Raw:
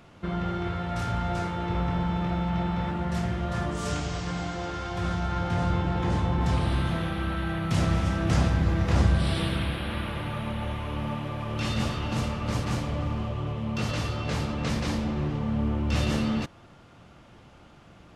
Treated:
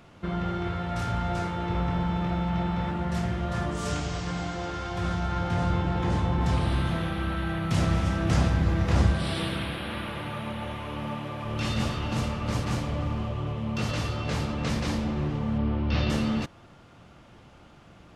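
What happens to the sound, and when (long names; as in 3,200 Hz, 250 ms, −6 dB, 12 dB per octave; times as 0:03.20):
0:09.12–0:11.45: high-pass filter 150 Hz 6 dB per octave
0:15.58–0:16.10: Butterworth low-pass 5,100 Hz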